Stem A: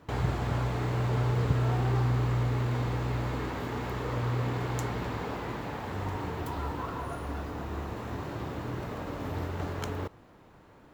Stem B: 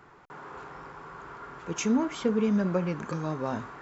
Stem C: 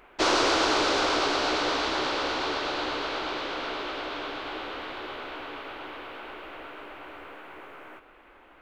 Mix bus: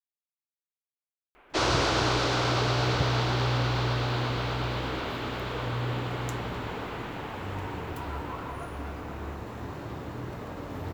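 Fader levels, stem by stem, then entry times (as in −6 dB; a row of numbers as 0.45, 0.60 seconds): −1.5 dB, muted, −3.0 dB; 1.50 s, muted, 1.35 s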